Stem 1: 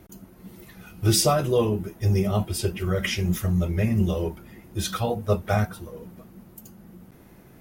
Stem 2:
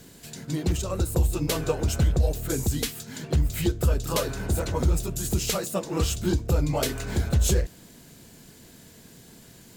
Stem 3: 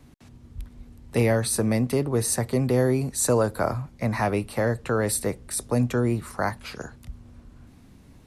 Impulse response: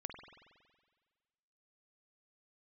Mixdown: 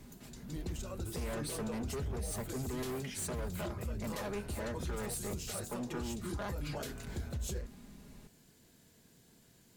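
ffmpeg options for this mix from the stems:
-filter_complex "[0:a]alimiter=limit=-14dB:level=0:latency=1:release=320,volume=-10dB[link_01];[1:a]volume=-14dB[link_02];[2:a]aecho=1:1:4.9:0.88,volume=-5dB[link_03];[link_01][link_03]amix=inputs=2:normalize=0,asoftclip=type=hard:threshold=-27dB,alimiter=level_in=12dB:limit=-24dB:level=0:latency=1:release=200,volume=-12dB,volume=0dB[link_04];[link_02][link_04]amix=inputs=2:normalize=0,alimiter=level_in=6.5dB:limit=-24dB:level=0:latency=1:release=40,volume=-6.5dB"

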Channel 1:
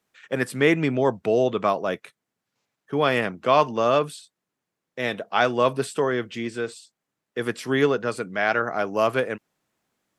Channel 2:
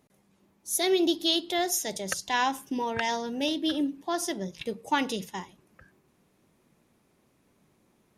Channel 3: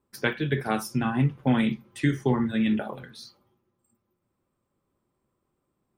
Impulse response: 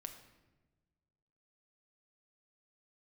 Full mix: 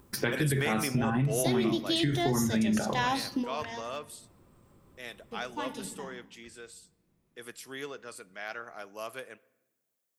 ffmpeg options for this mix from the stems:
-filter_complex "[0:a]aemphasis=mode=production:type=riaa,volume=-8dB,afade=type=out:start_time=1.53:duration=0.58:silence=0.266073,asplit=2[link_01][link_02];[link_02]volume=-8dB[link_03];[1:a]lowshelf=frequency=170:gain=11.5,adelay=650,volume=-4dB,asplit=3[link_04][link_05][link_06];[link_04]atrim=end=3.81,asetpts=PTS-STARTPTS,afade=type=out:start_time=3.806:duration=0.004:curve=hsin[link_07];[link_05]atrim=start=3.81:end=5.31,asetpts=PTS-STARTPTS,volume=0[link_08];[link_06]atrim=start=5.31,asetpts=PTS-STARTPTS,afade=type=in:duration=0.004:curve=hsin[link_09];[link_07][link_08][link_09]concat=n=3:v=0:a=1,asplit=2[link_10][link_11];[link_11]volume=-4.5dB[link_12];[2:a]agate=range=-33dB:threshold=-53dB:ratio=3:detection=peak,acompressor=mode=upward:threshold=-34dB:ratio=2.5,volume=2dB,asplit=3[link_13][link_14][link_15];[link_14]volume=-6dB[link_16];[link_15]apad=whole_len=389274[link_17];[link_10][link_17]sidechaingate=range=-33dB:threshold=-55dB:ratio=16:detection=peak[link_18];[link_01][link_13]amix=inputs=2:normalize=0,lowshelf=frequency=160:gain=9,alimiter=limit=-18dB:level=0:latency=1,volume=0dB[link_19];[3:a]atrim=start_sample=2205[link_20];[link_03][link_12][link_16]amix=inputs=3:normalize=0[link_21];[link_21][link_20]afir=irnorm=-1:irlink=0[link_22];[link_18][link_19][link_22]amix=inputs=3:normalize=0,acompressor=threshold=-24dB:ratio=5"

